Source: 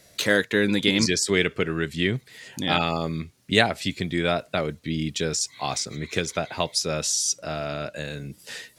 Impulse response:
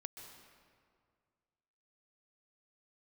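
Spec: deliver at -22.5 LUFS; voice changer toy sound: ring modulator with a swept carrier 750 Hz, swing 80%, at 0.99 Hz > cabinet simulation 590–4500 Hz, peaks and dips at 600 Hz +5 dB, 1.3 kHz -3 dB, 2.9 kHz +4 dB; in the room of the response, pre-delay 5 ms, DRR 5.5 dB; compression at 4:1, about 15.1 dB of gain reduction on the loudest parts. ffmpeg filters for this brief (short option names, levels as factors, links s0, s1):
-filter_complex "[0:a]acompressor=threshold=0.0224:ratio=4,asplit=2[s0][s1];[1:a]atrim=start_sample=2205,adelay=5[s2];[s1][s2]afir=irnorm=-1:irlink=0,volume=0.841[s3];[s0][s3]amix=inputs=2:normalize=0,aeval=exprs='val(0)*sin(2*PI*750*n/s+750*0.8/0.99*sin(2*PI*0.99*n/s))':c=same,highpass=590,equalizer=f=600:t=q:w=4:g=5,equalizer=f=1300:t=q:w=4:g=-3,equalizer=f=2900:t=q:w=4:g=4,lowpass=f=4500:w=0.5412,lowpass=f=4500:w=1.3066,volume=6.31"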